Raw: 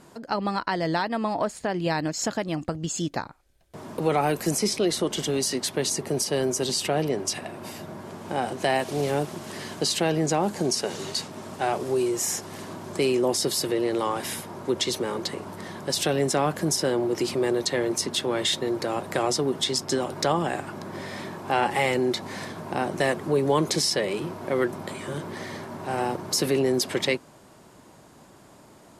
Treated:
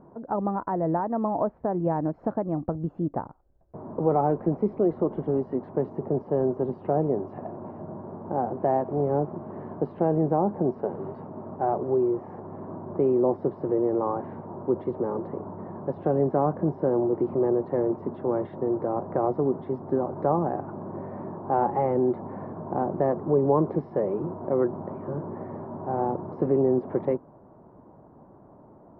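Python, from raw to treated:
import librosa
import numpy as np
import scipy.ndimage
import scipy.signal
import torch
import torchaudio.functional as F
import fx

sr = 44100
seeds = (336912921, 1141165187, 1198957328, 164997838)

y = scipy.signal.sosfilt(scipy.signal.butter(4, 1000.0, 'lowpass', fs=sr, output='sos'), x)
y = y * 10.0 ** (1.0 / 20.0)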